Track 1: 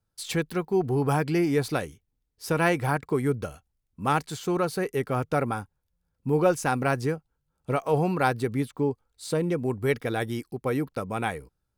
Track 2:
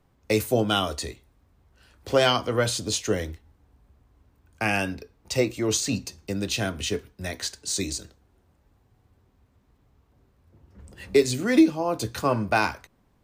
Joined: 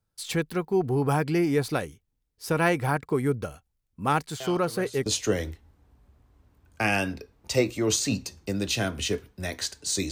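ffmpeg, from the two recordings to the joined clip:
-filter_complex "[1:a]asplit=2[a][b];[0:a]apad=whole_dur=10.11,atrim=end=10.11,atrim=end=5.062[c];[b]atrim=start=2.868:end=7.92[d];[a]atrim=start=2.21:end=2.87,asetpts=PTS-STARTPTS,volume=-17.5dB,afade=t=in:d=0.004:c=hsin,afade=t=out:st=0.656:d=0.004:c=hsin,adelay=4400[e];[c][d]acrossfade=d=0.004:c1=hsin:c2=hsin[f];[f][e]amix=inputs=2:normalize=0"

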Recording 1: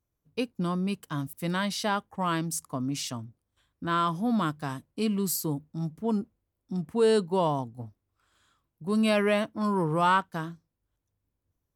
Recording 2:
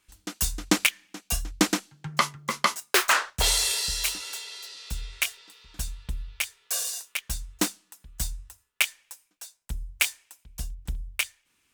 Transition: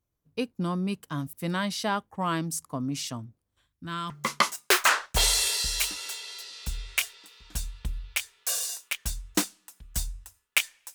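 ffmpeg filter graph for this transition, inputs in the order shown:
-filter_complex "[0:a]asettb=1/sr,asplit=3[a][b][c];[a]atrim=end=3.674[d];[b]atrim=start=3.67:end=4.1,asetpts=PTS-STARTPTS,afade=t=in:d=0.004:c=qsin,afade=t=out:st=0.426:d=0.004:c=qsin,equalizer=f=600:w=0.54:g=-14[e];[c]atrim=start=4.096[f];[d][e]acrossfade=d=0.004:c1=hsin:c2=qsin[g];[g][f]acrossfade=d=0.004:c1=qsin:c2=hsin,apad=whole_dur=10.94,atrim=end=10.94,atrim=end=4.102[h];[1:a]atrim=start=2.338:end=9.18[i];[h][i]acrossfade=d=0.004:c1=hsin:c2=hsin"

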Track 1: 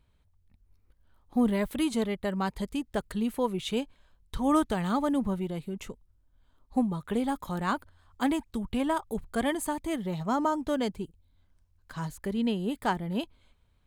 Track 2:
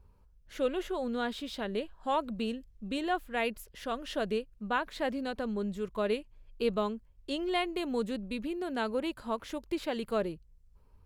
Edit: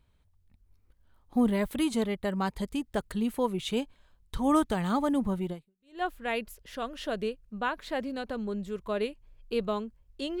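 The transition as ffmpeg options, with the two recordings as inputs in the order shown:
-filter_complex "[0:a]apad=whole_dur=10.4,atrim=end=10.4,atrim=end=6.02,asetpts=PTS-STARTPTS[a];[1:a]atrim=start=2.61:end=7.49,asetpts=PTS-STARTPTS[b];[a][b]acrossfade=d=0.5:c1=exp:c2=exp"

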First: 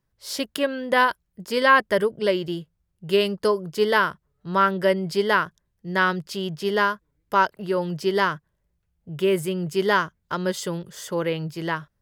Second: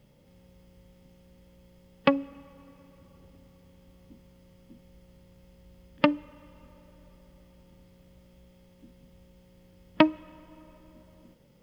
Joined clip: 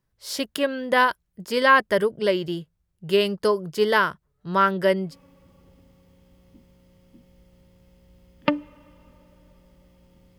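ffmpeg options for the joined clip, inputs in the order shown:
-filter_complex "[0:a]apad=whole_dur=10.38,atrim=end=10.38,atrim=end=5.16,asetpts=PTS-STARTPTS[a];[1:a]atrim=start=2.58:end=7.94,asetpts=PTS-STARTPTS[b];[a][b]acrossfade=d=0.14:c1=tri:c2=tri"

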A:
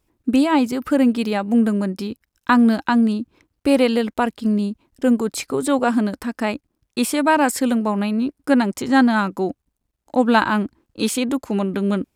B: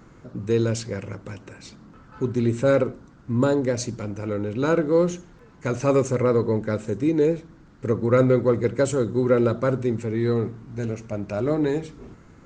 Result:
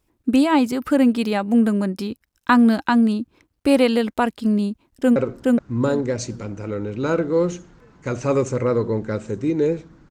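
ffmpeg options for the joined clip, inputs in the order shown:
-filter_complex "[0:a]apad=whole_dur=10.1,atrim=end=10.1,atrim=end=5.162[a];[1:a]atrim=start=2.748:end=7.69[b];[a][b]acrossfade=d=0.004:c1=hsin:c2=hsin,asplit=2[c][d];[d]afade=t=in:st=4.71:d=0.01,afade=t=out:st=5.16:d=0.01,aecho=0:1:420|840|1260:0.891251|0.17825|0.03565[e];[c][e]amix=inputs=2:normalize=0"

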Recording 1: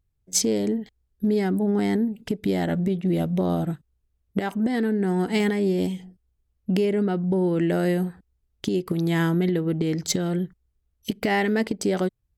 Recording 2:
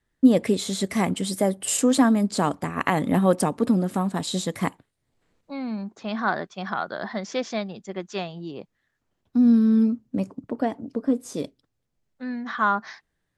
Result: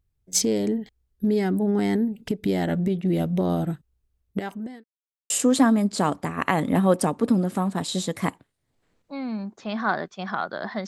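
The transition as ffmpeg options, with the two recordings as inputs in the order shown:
-filter_complex "[0:a]apad=whole_dur=10.87,atrim=end=10.87,asplit=2[a][b];[a]atrim=end=4.84,asetpts=PTS-STARTPTS,afade=t=out:st=4.2:d=0.64[c];[b]atrim=start=4.84:end=5.3,asetpts=PTS-STARTPTS,volume=0[d];[1:a]atrim=start=1.69:end=7.26,asetpts=PTS-STARTPTS,afade=t=in:d=0.004:c=hsin[e];[c][d][e]concat=n=3:v=0:a=1"

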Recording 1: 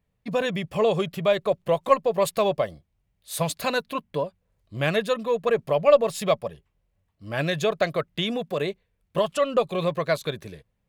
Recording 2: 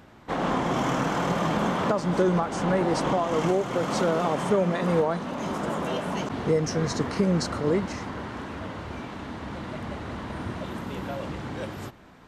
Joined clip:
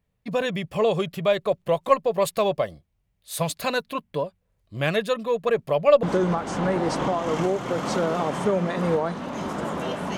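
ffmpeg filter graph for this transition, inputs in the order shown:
-filter_complex "[0:a]apad=whole_dur=10.17,atrim=end=10.17,atrim=end=6.032[a];[1:a]atrim=start=2.078:end=6.22[b];[a][b]acrossfade=d=0.004:c1=hsin:c2=hsin"

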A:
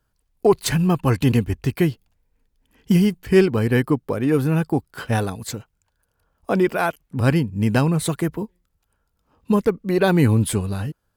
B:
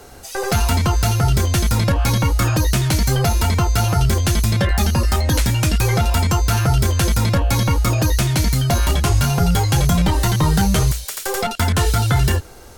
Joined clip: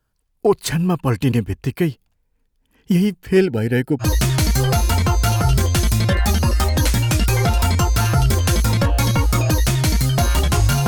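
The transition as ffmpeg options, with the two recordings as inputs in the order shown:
-filter_complex "[0:a]asettb=1/sr,asplit=3[a][b][c];[a]atrim=end=3.374[d];[b]atrim=start=3.37:end=4.07,asetpts=PTS-STARTPTS,afade=t=in:d=0.004:c=qsin,afade=t=out:st=0.696:d=0.004:c=qsin,asuperstop=centerf=1100:order=8:qfactor=2.8[e];[c]atrim=start=4.066[f];[d][e]acrossfade=d=0.004:c1=hsin:c2=qsin[g];[g][f]acrossfade=d=0.004:c1=qsin:c2=hsin,apad=whole_dur=10.87,atrim=end=10.87,atrim=end=4.07,asetpts=PTS-STARTPTS[h];[1:a]atrim=start=2.51:end=9.39,asetpts=PTS-STARTPTS[i];[h][i]acrossfade=d=0.08:c1=tri:c2=tri"

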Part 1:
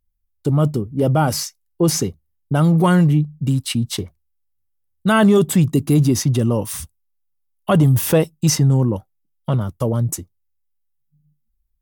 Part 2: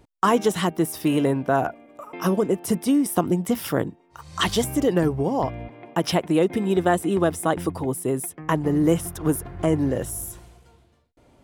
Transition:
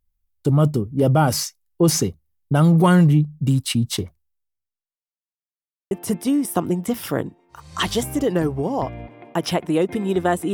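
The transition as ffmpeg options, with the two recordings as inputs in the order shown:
-filter_complex "[0:a]apad=whole_dur=10.53,atrim=end=10.53,asplit=2[a][b];[a]atrim=end=5.02,asetpts=PTS-STARTPTS,afade=t=out:st=4.13:d=0.89:c=qua[c];[b]atrim=start=5.02:end=5.91,asetpts=PTS-STARTPTS,volume=0[d];[1:a]atrim=start=2.52:end=7.14,asetpts=PTS-STARTPTS,afade=t=in:d=0.004:c=hsin[e];[c][d][e]concat=n=3:v=0:a=1"

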